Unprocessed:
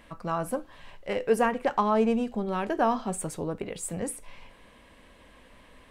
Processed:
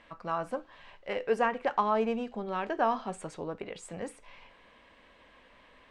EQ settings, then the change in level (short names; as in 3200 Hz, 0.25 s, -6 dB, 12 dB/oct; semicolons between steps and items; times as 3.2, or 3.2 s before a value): air absorption 120 m; low shelf 350 Hz -11 dB; 0.0 dB